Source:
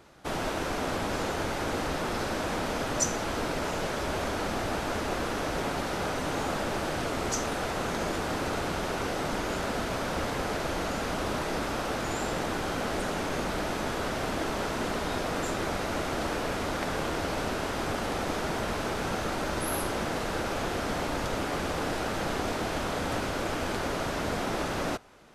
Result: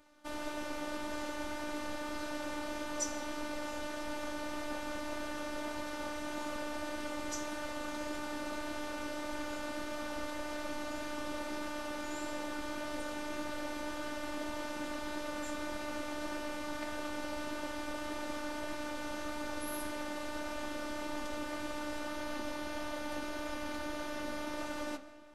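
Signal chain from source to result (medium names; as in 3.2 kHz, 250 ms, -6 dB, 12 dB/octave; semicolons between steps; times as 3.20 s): 22.08–24.57 s: band-stop 7.7 kHz, Q 8.4; reverberation RT60 2.5 s, pre-delay 95 ms, DRR 14.5 dB; robot voice 298 Hz; flange 1.7 Hz, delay 6.6 ms, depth 8.6 ms, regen +74%; trim -2.5 dB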